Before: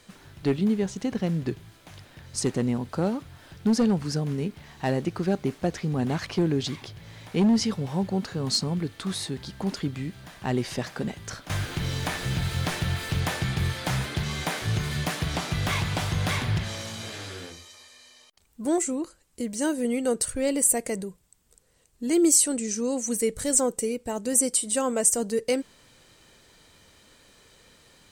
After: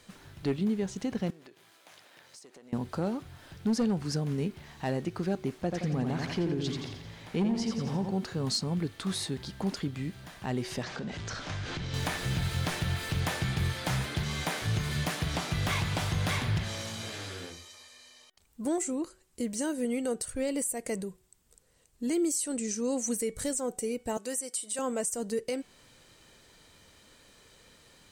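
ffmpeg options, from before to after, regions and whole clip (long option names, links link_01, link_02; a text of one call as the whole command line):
ffmpeg -i in.wav -filter_complex "[0:a]asettb=1/sr,asplit=3[link_01][link_02][link_03];[link_01]atrim=end=1.304[link_04];[link_02]atrim=start=1.3:end=2.73,asetpts=PTS-STARTPTS,afade=type=in:duration=0.004:curve=qsin,afade=type=out:start_time=1.426:duration=0.004:curve=qsin,aeval=exprs='if(lt(val(0),0),0.708*val(0),val(0))':channel_layout=same,highpass=440,acompressor=threshold=-46dB:ratio=16:attack=3.2:release=140:knee=1:detection=peak[link_05];[link_03]atrim=start=2.726[link_06];[link_04][link_05]acrossfade=duration=0.004:curve1=hsin:curve2=qsin[link_07];[link_07][link_06]acrossfade=duration=0.004:curve1=qsin:curve2=hsin,asettb=1/sr,asplit=3[link_08][link_09][link_10];[link_08]atrim=end=5.624[link_11];[link_09]atrim=start=5.62:end=8.11,asetpts=PTS-STARTPTS,afade=type=in:duration=0.004:curve=qsin,afade=type=out:start_time=2.486:duration=0.004:curve=qsin,highshelf=frequency=5600:gain=-5,aecho=1:1:86|172|258|344|430|516:0.562|0.27|0.13|0.0622|0.0299|0.0143,atrim=end_sample=109809[link_12];[link_10]atrim=start=8.106[link_13];[link_11][link_12]acrossfade=duration=0.004:curve1=hsin:curve2=qsin[link_14];[link_14][link_13]acrossfade=duration=0.004:curve1=qsin:curve2=hsin,asettb=1/sr,asplit=3[link_15][link_16][link_17];[link_15]atrim=end=10.834[link_18];[link_16]atrim=start=10.83:end=11.94,asetpts=PTS-STARTPTS,afade=type=in:duration=0.004:curve=qsin,afade=type=out:start_time=1.106:duration=0.004:curve=qsin,aeval=exprs='val(0)+0.5*0.0168*sgn(val(0))':channel_layout=same,lowpass=frequency=6500:width=0.5412,lowpass=frequency=6500:width=1.3066,acompressor=threshold=-31dB:ratio=5:attack=3.2:release=140:knee=1:detection=peak[link_19];[link_17]atrim=start=11.936[link_20];[link_18][link_19]acrossfade=duration=0.004:curve1=hsin:curve2=qsin[link_21];[link_21][link_20]acrossfade=duration=0.004:curve1=qsin:curve2=hsin,asettb=1/sr,asplit=3[link_22][link_23][link_24];[link_22]atrim=end=24.174[link_25];[link_23]atrim=start=24.17:end=24.79,asetpts=PTS-STARTPTS,afade=type=in:duration=0.004:curve=qsin,afade=type=out:start_time=0.616:duration=0.004:curve=qsin,highpass=240,lowshelf=frequency=420:gain=-9.5[link_26];[link_24]atrim=start=24.786[link_27];[link_25][link_26]acrossfade=duration=0.004:curve1=hsin:curve2=qsin[link_28];[link_28][link_27]acrossfade=duration=0.004:curve1=qsin:curve2=hsin,alimiter=limit=-20dB:level=0:latency=1:release=236,bandreject=frequency=372.7:width_type=h:width=4,bandreject=frequency=745.4:width_type=h:width=4,bandreject=frequency=1118.1:width_type=h:width=4,bandreject=frequency=1490.8:width_type=h:width=4,bandreject=frequency=1863.5:width_type=h:width=4,bandreject=frequency=2236.2:width_type=h:width=4,bandreject=frequency=2608.9:width_type=h:width=4,bandreject=frequency=2981.6:width_type=h:width=4,bandreject=frequency=3354.3:width_type=h:width=4,bandreject=frequency=3727:width_type=h:width=4,volume=-2dB" out.wav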